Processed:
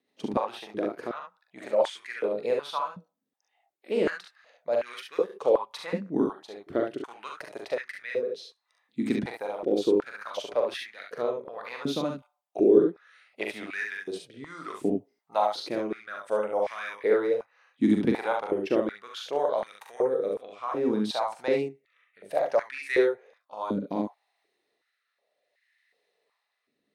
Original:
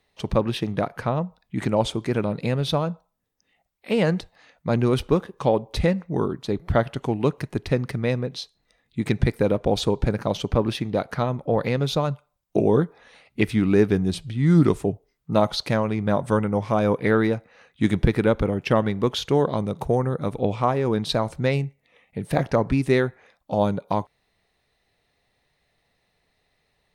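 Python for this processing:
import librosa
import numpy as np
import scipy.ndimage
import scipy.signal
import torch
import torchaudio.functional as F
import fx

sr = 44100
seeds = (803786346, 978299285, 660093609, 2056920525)

y = fx.rotary_switch(x, sr, hz=7.5, then_hz=0.65, switch_at_s=5.47)
y = fx.room_early_taps(y, sr, ms=(42, 61, 71), db=(-5.0, -8.0, -5.5))
y = fx.filter_held_highpass(y, sr, hz=2.7, low_hz=260.0, high_hz=1800.0)
y = y * 10.0 ** (-8.0 / 20.0)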